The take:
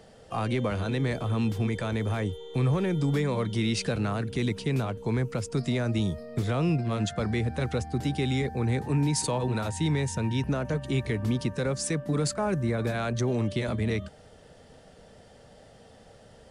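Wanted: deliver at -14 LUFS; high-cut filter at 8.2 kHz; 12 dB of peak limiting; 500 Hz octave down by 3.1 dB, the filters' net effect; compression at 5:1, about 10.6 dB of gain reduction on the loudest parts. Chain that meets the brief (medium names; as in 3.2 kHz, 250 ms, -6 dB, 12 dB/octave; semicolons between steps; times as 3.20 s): low-pass 8.2 kHz; peaking EQ 500 Hz -4 dB; compression 5:1, threshold -35 dBFS; trim +29.5 dB; peak limiter -6 dBFS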